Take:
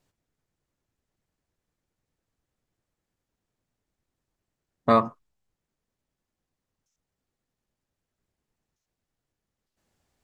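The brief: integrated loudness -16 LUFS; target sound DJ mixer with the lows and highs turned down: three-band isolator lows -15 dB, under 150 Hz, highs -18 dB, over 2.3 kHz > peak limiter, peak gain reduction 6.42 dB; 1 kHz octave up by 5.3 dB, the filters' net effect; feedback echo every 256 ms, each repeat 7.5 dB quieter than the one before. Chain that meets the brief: three-band isolator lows -15 dB, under 150 Hz, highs -18 dB, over 2.3 kHz; peaking EQ 1 kHz +7 dB; feedback delay 256 ms, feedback 42%, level -7.5 dB; trim +9.5 dB; peak limiter -2 dBFS

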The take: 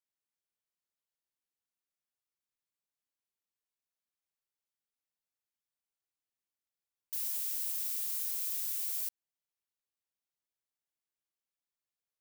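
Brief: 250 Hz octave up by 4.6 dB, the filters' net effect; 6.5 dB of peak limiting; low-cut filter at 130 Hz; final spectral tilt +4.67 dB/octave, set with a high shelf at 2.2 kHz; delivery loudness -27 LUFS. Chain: high-pass 130 Hz; peaking EQ 250 Hz +6.5 dB; treble shelf 2.2 kHz -3.5 dB; trim +13 dB; peak limiter -19.5 dBFS

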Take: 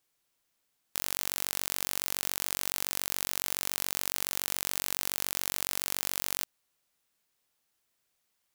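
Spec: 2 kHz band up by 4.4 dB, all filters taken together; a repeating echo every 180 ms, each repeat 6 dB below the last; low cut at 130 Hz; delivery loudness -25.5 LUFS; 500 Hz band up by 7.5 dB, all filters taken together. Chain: high-pass 130 Hz; peaking EQ 500 Hz +9 dB; peaking EQ 2 kHz +5 dB; feedback delay 180 ms, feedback 50%, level -6 dB; trim +3.5 dB

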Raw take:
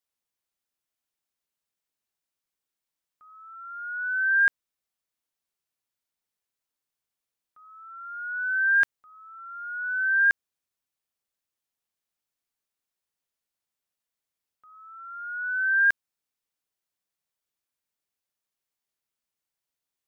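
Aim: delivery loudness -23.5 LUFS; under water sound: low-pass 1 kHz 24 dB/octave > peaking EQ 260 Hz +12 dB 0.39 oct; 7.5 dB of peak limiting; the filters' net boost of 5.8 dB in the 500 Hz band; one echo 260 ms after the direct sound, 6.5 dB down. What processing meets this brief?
peaking EQ 500 Hz +6.5 dB; peak limiter -21.5 dBFS; low-pass 1 kHz 24 dB/octave; peaking EQ 260 Hz +12 dB 0.39 oct; delay 260 ms -6.5 dB; trim +19 dB

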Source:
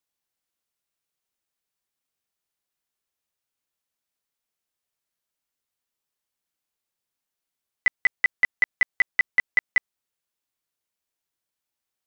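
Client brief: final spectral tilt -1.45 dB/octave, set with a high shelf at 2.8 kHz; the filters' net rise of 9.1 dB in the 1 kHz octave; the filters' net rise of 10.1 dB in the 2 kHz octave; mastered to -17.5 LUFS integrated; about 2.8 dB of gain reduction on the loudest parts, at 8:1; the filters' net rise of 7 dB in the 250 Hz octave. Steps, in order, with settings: peaking EQ 250 Hz +8.5 dB; peaking EQ 1 kHz +8 dB; peaking EQ 2 kHz +6.5 dB; treble shelf 2.8 kHz +6 dB; compression 8:1, threshold -8 dBFS; trim -2 dB

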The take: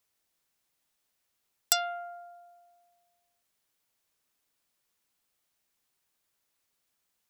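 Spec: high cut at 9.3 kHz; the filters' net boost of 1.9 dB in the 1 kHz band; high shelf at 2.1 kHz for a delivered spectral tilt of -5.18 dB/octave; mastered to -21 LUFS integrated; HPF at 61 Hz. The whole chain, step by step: high-pass 61 Hz; low-pass 9.3 kHz; peaking EQ 1 kHz +6 dB; treble shelf 2.1 kHz -6.5 dB; trim +14 dB

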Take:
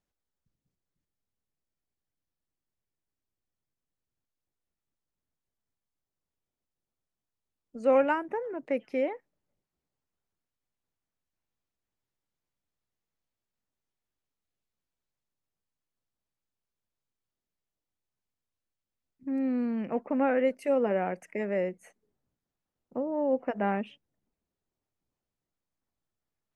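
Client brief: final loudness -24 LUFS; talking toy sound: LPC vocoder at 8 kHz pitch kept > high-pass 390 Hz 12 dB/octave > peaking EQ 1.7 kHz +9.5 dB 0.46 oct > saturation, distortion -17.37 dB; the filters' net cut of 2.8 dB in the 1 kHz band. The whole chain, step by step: peaking EQ 1 kHz -4.5 dB; LPC vocoder at 8 kHz pitch kept; high-pass 390 Hz 12 dB/octave; peaking EQ 1.7 kHz +9.5 dB 0.46 oct; saturation -22 dBFS; trim +10 dB

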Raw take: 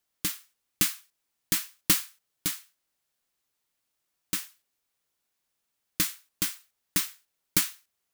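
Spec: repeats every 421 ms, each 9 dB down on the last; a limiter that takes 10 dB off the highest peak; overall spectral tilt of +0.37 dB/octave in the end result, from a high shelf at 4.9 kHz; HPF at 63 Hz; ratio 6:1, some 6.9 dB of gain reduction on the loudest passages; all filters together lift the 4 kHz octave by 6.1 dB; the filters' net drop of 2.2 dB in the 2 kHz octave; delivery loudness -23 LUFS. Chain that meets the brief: high-pass 63 Hz; peaking EQ 2 kHz -6 dB; peaking EQ 4 kHz +6 dB; treble shelf 4.9 kHz +6 dB; compression 6:1, threshold -20 dBFS; peak limiter -12.5 dBFS; feedback delay 421 ms, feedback 35%, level -9 dB; trim +9 dB

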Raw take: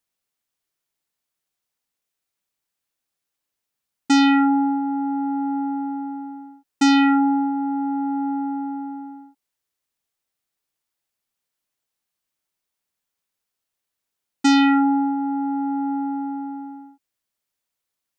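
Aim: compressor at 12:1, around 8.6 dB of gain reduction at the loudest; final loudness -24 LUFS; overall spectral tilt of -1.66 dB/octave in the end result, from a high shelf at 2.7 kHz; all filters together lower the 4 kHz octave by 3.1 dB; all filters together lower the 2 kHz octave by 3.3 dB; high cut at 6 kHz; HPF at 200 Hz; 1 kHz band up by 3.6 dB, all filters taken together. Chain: high-pass 200 Hz; low-pass 6 kHz; peaking EQ 1 kHz +5.5 dB; peaking EQ 2 kHz -6 dB; treble shelf 2.7 kHz +6 dB; peaking EQ 4 kHz -6.5 dB; compression 12:1, threshold -19 dBFS; trim +1.5 dB

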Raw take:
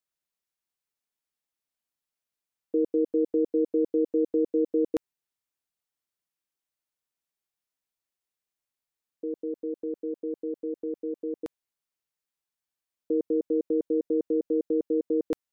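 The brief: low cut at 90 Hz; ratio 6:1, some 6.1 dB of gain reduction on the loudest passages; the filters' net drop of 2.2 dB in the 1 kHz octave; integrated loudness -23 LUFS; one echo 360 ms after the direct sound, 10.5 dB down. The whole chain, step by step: high-pass 90 Hz; peaking EQ 1 kHz -3 dB; compression 6:1, threshold -28 dBFS; delay 360 ms -10.5 dB; trim +11.5 dB

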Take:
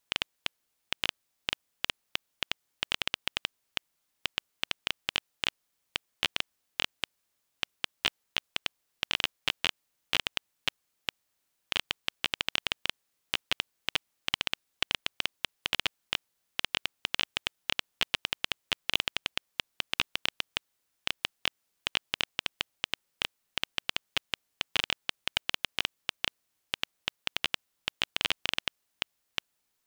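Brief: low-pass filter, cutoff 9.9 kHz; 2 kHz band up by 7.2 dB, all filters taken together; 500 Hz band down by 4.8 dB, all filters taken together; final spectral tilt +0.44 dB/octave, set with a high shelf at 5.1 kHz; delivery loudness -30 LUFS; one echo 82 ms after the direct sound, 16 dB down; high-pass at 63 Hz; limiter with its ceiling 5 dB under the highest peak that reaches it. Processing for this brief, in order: high-pass 63 Hz; low-pass 9.9 kHz; peaking EQ 500 Hz -7 dB; peaking EQ 2 kHz +9 dB; treble shelf 5.1 kHz +3.5 dB; peak limiter -6 dBFS; delay 82 ms -16 dB; trim +0.5 dB

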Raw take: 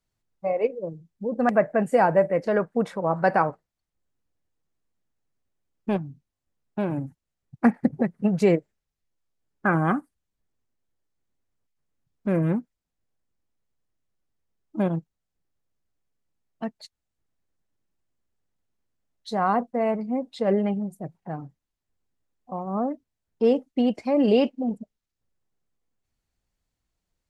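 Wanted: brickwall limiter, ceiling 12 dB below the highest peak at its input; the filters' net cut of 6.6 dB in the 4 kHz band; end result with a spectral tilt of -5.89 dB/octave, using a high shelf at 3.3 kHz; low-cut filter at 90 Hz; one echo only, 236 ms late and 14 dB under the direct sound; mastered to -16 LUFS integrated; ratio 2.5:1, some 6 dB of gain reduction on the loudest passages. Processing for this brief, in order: high-pass 90 Hz; treble shelf 3.3 kHz -5 dB; peaking EQ 4 kHz -6.5 dB; compression 2.5:1, threshold -23 dBFS; peak limiter -22.5 dBFS; delay 236 ms -14 dB; trim +17.5 dB

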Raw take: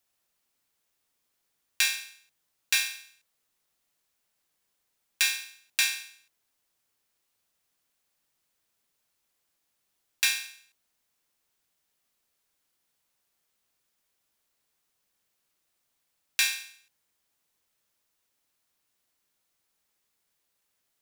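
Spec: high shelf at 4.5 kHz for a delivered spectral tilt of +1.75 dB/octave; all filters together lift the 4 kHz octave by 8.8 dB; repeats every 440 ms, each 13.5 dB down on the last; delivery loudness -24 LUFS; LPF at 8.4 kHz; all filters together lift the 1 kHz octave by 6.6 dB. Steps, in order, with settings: low-pass 8.4 kHz; peaking EQ 1 kHz +7.5 dB; peaking EQ 4 kHz +8.5 dB; treble shelf 4.5 kHz +3 dB; feedback delay 440 ms, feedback 21%, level -13.5 dB; trim -1 dB

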